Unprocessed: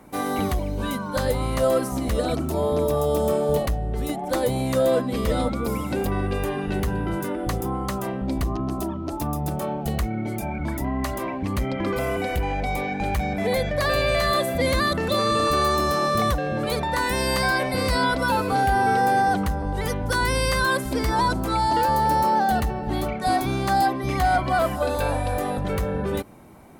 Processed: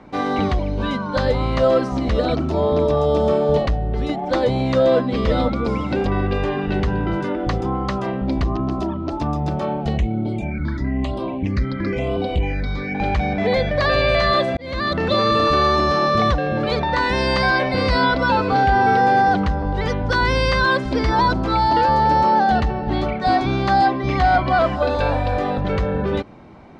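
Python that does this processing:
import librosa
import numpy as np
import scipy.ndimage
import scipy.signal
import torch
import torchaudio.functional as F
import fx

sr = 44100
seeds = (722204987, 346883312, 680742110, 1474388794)

y = fx.phaser_stages(x, sr, stages=6, low_hz=700.0, high_hz=1900.0, hz=1.0, feedback_pct=25, at=(9.97, 12.95))
y = fx.edit(y, sr, fx.fade_in_span(start_s=14.57, length_s=0.46), tone=tone)
y = scipy.signal.sosfilt(scipy.signal.butter(4, 4900.0, 'lowpass', fs=sr, output='sos'), y)
y = F.gain(torch.from_numpy(y), 4.5).numpy()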